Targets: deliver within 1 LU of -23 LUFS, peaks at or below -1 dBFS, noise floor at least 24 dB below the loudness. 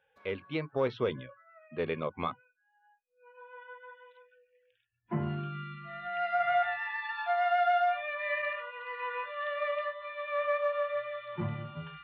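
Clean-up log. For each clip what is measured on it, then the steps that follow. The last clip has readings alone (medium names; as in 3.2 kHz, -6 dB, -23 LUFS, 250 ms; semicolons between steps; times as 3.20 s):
loudness -33.0 LUFS; peak level -18.5 dBFS; loudness target -23.0 LUFS
-> trim +10 dB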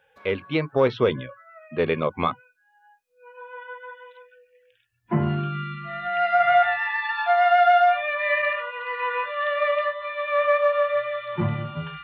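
loudness -23.0 LUFS; peak level -8.5 dBFS; noise floor -65 dBFS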